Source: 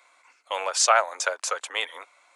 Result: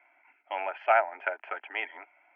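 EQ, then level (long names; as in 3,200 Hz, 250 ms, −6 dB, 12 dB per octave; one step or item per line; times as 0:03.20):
Chebyshev low-pass with heavy ripple 3,300 Hz, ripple 3 dB
low-shelf EQ 240 Hz +11 dB
phaser with its sweep stopped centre 750 Hz, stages 8
0.0 dB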